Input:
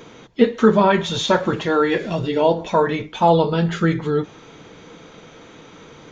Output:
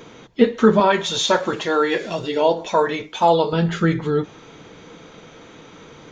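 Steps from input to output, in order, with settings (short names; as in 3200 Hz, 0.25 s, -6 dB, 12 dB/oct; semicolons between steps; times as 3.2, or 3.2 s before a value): 0.8–3.53 tone controls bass -10 dB, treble +6 dB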